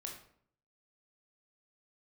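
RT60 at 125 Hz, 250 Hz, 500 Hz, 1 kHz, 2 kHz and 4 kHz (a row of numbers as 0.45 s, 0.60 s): 0.80 s, 0.75 s, 0.65 s, 0.60 s, 0.50 s, 0.40 s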